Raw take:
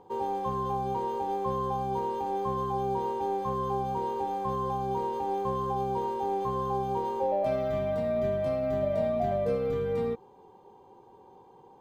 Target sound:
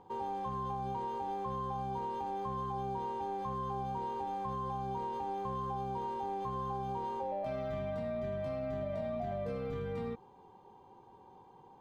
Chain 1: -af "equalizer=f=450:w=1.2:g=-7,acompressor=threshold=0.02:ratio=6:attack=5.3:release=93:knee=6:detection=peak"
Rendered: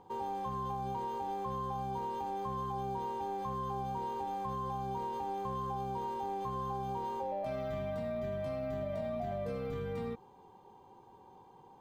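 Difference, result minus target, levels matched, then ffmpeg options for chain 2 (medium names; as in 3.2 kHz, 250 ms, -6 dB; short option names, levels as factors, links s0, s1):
8 kHz band +4.5 dB
-af "equalizer=f=450:w=1.2:g=-7,acompressor=threshold=0.02:ratio=6:attack=5.3:release=93:knee=6:detection=peak,highshelf=f=7700:g=-10.5"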